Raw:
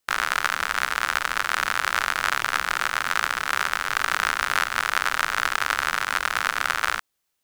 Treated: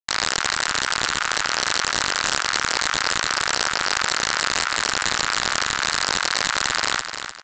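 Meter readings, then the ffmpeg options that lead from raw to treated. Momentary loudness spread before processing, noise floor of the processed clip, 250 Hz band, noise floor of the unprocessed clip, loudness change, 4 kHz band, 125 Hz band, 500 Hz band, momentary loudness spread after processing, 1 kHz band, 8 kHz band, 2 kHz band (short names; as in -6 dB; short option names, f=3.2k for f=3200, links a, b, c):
1 LU, -32 dBFS, +8.0 dB, -76 dBFS, +2.5 dB, +8.0 dB, +7.0 dB, +5.5 dB, 1 LU, 0.0 dB, +9.0 dB, 0.0 dB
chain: -filter_complex "[0:a]highpass=f=720:w=0.5412,highpass=f=720:w=1.3066,asplit=2[a][b];[b]alimiter=limit=-14dB:level=0:latency=1:release=347,volume=2dB[c];[a][c]amix=inputs=2:normalize=0,acrusher=bits=8:mix=0:aa=0.000001,aresample=16000,aeval=exprs='(mod(2.99*val(0)+1,2)-1)/2.99':c=same,aresample=44100,aecho=1:1:301|602|903|1204:0.376|0.132|0.046|0.0161"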